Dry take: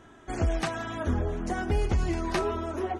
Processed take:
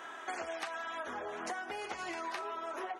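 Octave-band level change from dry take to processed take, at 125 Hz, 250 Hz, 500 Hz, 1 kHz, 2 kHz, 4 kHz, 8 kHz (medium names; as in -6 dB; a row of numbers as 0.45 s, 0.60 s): -36.0 dB, -17.5 dB, -10.5 dB, -4.5 dB, -3.0 dB, -5.0 dB, -6.0 dB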